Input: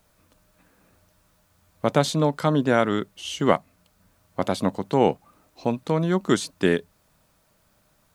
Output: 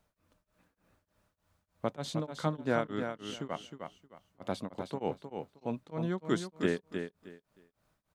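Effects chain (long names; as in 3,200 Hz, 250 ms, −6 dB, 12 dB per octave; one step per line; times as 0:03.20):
high-shelf EQ 5,000 Hz −7.5 dB
repeating echo 312 ms, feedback 22%, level −7 dB
tremolo along a rectified sine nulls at 3.3 Hz
level −9 dB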